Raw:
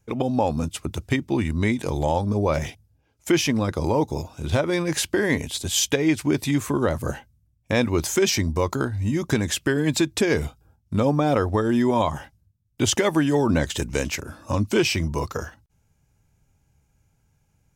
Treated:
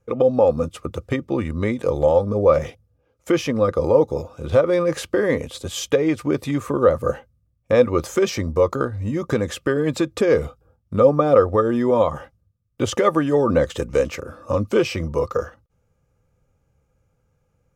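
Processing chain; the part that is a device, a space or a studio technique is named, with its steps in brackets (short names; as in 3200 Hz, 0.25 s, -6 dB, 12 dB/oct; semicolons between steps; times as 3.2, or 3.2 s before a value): inside a helmet (high shelf 3300 Hz -8 dB; small resonant body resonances 510/1200 Hz, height 16 dB, ringing for 45 ms); gain -1.5 dB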